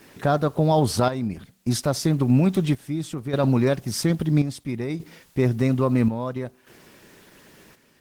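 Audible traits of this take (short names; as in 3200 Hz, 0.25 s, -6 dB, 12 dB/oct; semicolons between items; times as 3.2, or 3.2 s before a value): a quantiser's noise floor 10-bit, dither triangular; chopped level 0.6 Hz, depth 65%, duty 65%; Opus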